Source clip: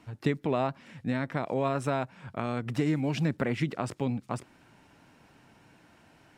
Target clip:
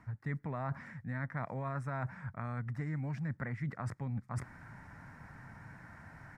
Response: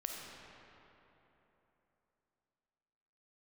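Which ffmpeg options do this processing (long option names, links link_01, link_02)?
-af "firequalizer=gain_entry='entry(120,0);entry(340,-17);entry(550,-12);entry(960,-6);entry(1900,-1);entry(2800,-25);entry(5200,-16)':delay=0.05:min_phase=1,areverse,acompressor=threshold=-47dB:ratio=12,areverse,volume=12dB"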